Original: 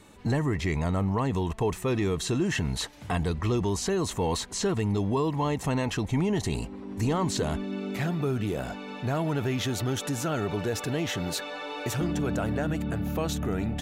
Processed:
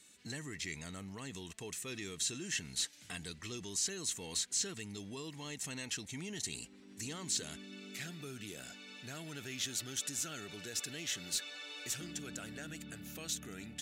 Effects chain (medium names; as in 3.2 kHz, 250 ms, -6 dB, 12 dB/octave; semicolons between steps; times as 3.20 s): differentiator; saturation -27.5 dBFS, distortion -19 dB; FFT filter 170 Hz 0 dB, 280 Hz -3 dB, 1 kHz -21 dB, 1.5 kHz -11 dB, 7.7 kHz -11 dB, 13 kHz -22 dB; trim +13.5 dB